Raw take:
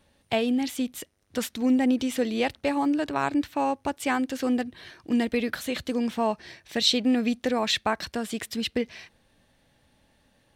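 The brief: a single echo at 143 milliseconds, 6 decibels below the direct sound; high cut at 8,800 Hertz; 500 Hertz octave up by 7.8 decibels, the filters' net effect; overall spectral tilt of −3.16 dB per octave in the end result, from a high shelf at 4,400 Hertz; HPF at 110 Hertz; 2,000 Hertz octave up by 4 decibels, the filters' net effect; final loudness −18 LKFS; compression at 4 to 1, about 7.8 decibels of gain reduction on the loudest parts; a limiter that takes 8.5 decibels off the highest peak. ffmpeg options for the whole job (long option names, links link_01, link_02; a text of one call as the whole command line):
ffmpeg -i in.wav -af "highpass=110,lowpass=8800,equalizer=frequency=500:width_type=o:gain=8.5,equalizer=frequency=2000:width_type=o:gain=3.5,highshelf=frequency=4400:gain=5.5,acompressor=threshold=-24dB:ratio=4,alimiter=limit=-19dB:level=0:latency=1,aecho=1:1:143:0.501,volume=11.5dB" out.wav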